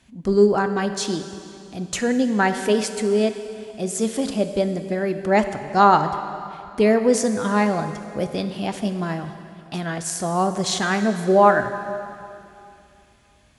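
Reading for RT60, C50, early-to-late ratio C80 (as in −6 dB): 2.7 s, 9.0 dB, 10.0 dB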